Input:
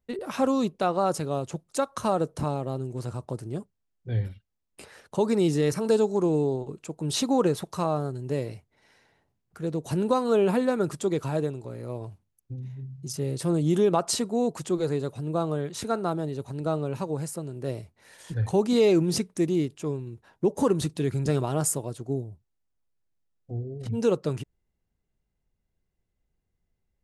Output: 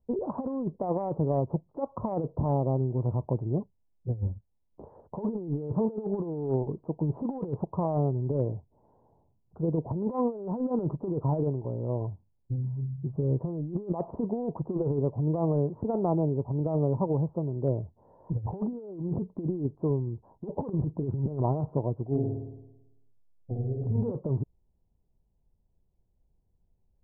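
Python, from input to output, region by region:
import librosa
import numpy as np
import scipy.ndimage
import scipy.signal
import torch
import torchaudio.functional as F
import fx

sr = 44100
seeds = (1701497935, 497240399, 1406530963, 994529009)

y = fx.chain(x, sr, fx.tremolo(hz=9.6, depth=0.63),
    fx.room_flutter(wall_m=9.4, rt60_s=0.98), at=(22.05, 24.12))
y = scipy.signal.sosfilt(scipy.signal.cheby1(5, 1.0, 990.0, 'lowpass', fs=sr, output='sos'), y)
y = fx.low_shelf(y, sr, hz=160.0, db=5.0)
y = fx.over_compress(y, sr, threshold_db=-27.0, ratio=-0.5)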